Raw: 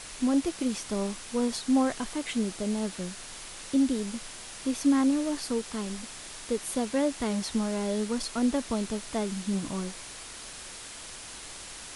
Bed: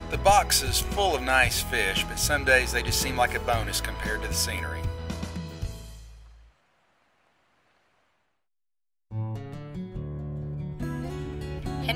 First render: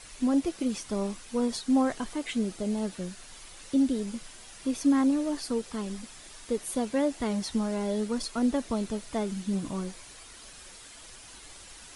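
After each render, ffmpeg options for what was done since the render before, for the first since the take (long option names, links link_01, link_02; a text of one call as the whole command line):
ffmpeg -i in.wav -af "afftdn=noise_reduction=8:noise_floor=-43" out.wav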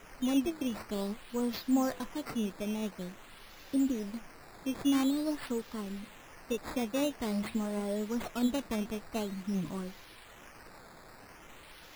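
ffmpeg -i in.wav -af "acrusher=samples=10:mix=1:aa=0.000001:lfo=1:lforange=10:lforate=0.48,flanger=delay=3.1:depth=6.9:regen=83:speed=0.75:shape=sinusoidal" out.wav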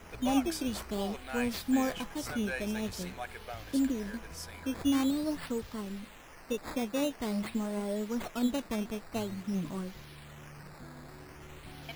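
ffmpeg -i in.wav -i bed.wav -filter_complex "[1:a]volume=-17.5dB[link_01];[0:a][link_01]amix=inputs=2:normalize=0" out.wav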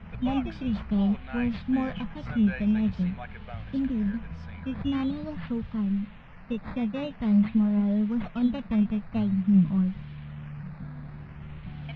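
ffmpeg -i in.wav -af "lowpass=frequency=3200:width=0.5412,lowpass=frequency=3200:width=1.3066,lowshelf=frequency=250:width_type=q:width=3:gain=8.5" out.wav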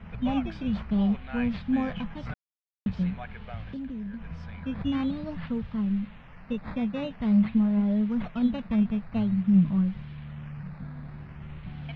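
ffmpeg -i in.wav -filter_complex "[0:a]asettb=1/sr,asplit=3[link_01][link_02][link_03];[link_01]atrim=end=3.634[link_04];[link_02]atrim=start=3.63:end=4.27,asetpts=PTS-STARTPTS,afade=type=in:duration=0.004:curve=qsin,afade=type=out:start_time=0.636:duration=0.004:curve=qsin,acompressor=threshold=-34dB:ratio=4:attack=3.2:release=140:knee=1:detection=peak[link_05];[link_03]atrim=start=4.266[link_06];[link_04][link_05]acrossfade=duration=0.004:curve1=hsin:curve2=qsin[link_07];[link_07][link_06]acrossfade=duration=0.004:curve1=qsin:curve2=hsin,asplit=3[link_08][link_09][link_10];[link_08]atrim=end=2.34,asetpts=PTS-STARTPTS,afade=type=out:start_time=2.336:duration=0.004:curve=hsin[link_11];[link_09]atrim=start=2.34:end=2.86,asetpts=PTS-STARTPTS,volume=0[link_12];[link_10]atrim=start=2.86,asetpts=PTS-STARTPTS,afade=type=in:duration=0.004:curve=hsin[link_13];[link_11][link_12][link_13]concat=n=3:v=0:a=1" out.wav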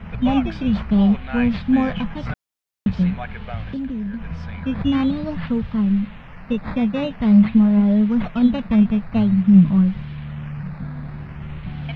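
ffmpeg -i in.wav -af "volume=9dB" out.wav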